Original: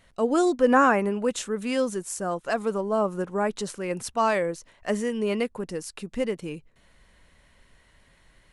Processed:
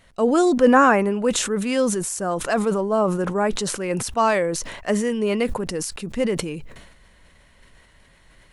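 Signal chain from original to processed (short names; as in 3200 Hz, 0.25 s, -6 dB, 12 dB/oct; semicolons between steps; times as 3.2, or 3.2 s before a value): sustainer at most 51 dB/s; gain +4 dB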